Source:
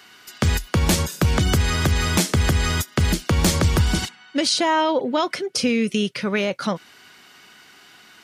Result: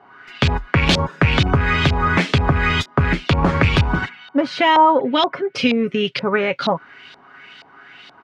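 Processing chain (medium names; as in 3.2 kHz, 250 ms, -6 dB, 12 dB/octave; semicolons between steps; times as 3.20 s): rattle on loud lows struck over -16 dBFS, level -17 dBFS; comb 7.3 ms, depth 38%; LFO low-pass saw up 2.1 Hz 750–4000 Hz; trim +2.5 dB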